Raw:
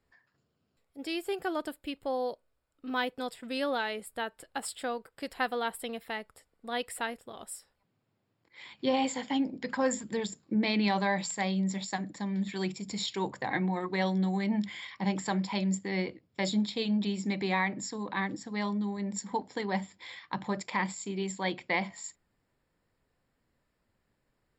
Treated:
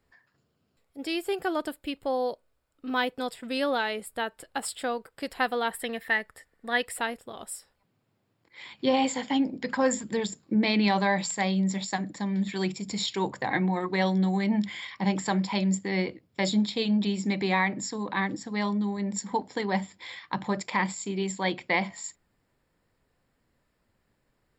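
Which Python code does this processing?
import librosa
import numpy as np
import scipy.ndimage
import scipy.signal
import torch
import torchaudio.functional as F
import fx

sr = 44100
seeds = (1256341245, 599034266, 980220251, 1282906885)

y = fx.peak_eq(x, sr, hz=1800.0, db=15.0, octaves=0.27, at=(5.71, 6.85))
y = F.gain(torch.from_numpy(y), 4.0).numpy()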